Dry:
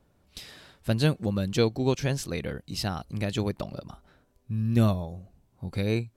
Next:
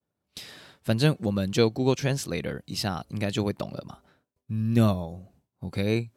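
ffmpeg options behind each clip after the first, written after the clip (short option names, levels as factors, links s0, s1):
-af "agate=range=0.0224:threshold=0.00224:ratio=3:detection=peak,highpass=100,volume=1.26"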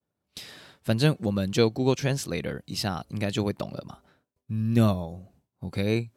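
-af anull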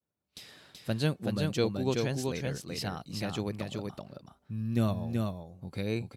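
-af "aecho=1:1:379:0.668,volume=0.447"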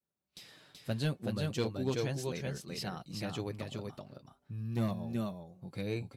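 -af "volume=11.2,asoftclip=hard,volume=0.0891,flanger=delay=5.1:depth=3:regen=-42:speed=0.38:shape=sinusoidal"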